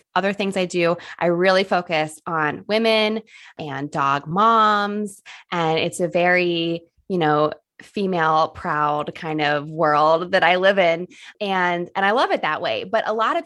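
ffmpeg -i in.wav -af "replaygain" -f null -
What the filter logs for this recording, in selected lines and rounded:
track_gain = +0.0 dB
track_peak = 0.568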